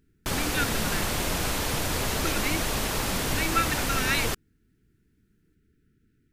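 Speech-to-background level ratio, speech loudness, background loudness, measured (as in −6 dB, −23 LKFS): −3.5 dB, −31.0 LKFS, −27.5 LKFS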